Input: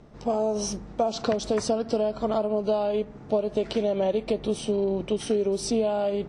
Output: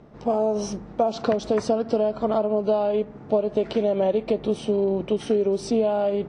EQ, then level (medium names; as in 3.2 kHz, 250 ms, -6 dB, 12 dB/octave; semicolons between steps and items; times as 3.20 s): low-pass 2.2 kHz 6 dB/octave; bass shelf 61 Hz -11.5 dB; +3.5 dB